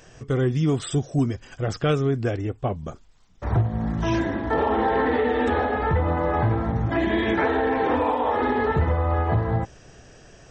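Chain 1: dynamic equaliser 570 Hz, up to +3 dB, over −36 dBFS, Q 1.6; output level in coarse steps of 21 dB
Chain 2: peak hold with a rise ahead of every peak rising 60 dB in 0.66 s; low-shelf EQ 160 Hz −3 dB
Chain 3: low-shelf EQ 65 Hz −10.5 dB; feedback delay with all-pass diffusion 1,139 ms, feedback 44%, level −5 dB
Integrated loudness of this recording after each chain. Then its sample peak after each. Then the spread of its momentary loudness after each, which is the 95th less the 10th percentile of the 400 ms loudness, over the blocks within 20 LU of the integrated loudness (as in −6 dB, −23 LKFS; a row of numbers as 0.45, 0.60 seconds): −25.5, −22.5, −23.5 LKFS; −11.5, −10.5, −9.5 dBFS; 10, 7, 6 LU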